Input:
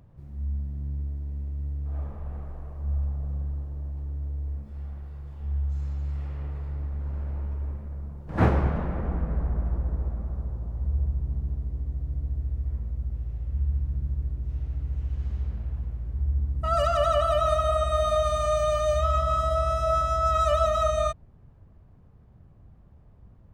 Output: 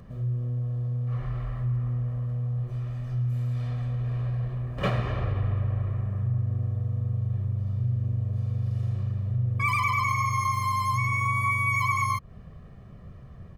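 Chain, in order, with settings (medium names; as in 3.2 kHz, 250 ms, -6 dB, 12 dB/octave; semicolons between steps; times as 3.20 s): compression 2:1, threshold -38 dBFS, peak gain reduction 12.5 dB; speed mistake 45 rpm record played at 78 rpm; comb 1.7 ms, depth 71%; trim +5 dB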